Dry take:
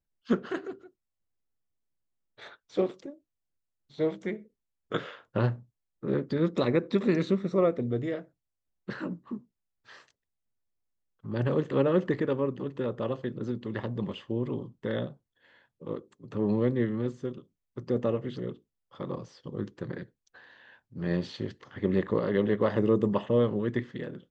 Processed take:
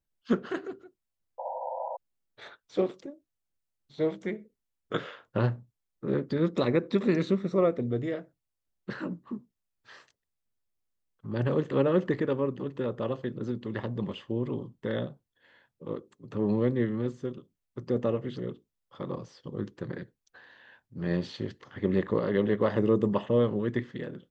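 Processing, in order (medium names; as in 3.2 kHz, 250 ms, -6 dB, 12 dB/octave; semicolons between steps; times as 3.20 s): painted sound noise, 1.38–1.97 s, 500–1000 Hz -35 dBFS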